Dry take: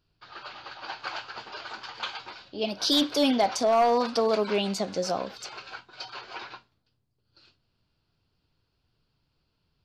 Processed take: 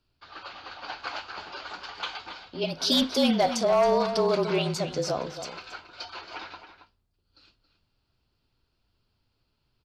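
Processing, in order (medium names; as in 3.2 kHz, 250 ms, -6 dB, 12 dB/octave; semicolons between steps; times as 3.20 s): echo from a far wall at 47 m, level -10 dB; frequency shift -34 Hz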